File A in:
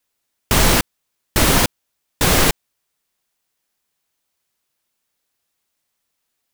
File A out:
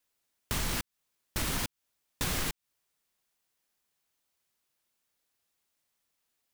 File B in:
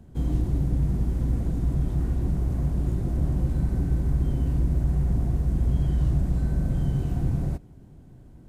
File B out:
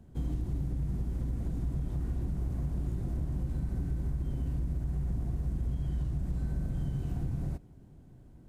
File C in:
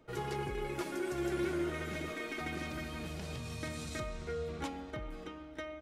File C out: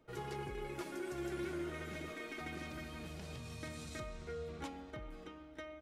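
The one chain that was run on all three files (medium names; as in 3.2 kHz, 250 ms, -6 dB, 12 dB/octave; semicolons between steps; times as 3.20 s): dynamic bell 540 Hz, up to -6 dB, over -35 dBFS, Q 0.85; compression 12:1, threshold -22 dBFS; hard clipper -19.5 dBFS; trim -5.5 dB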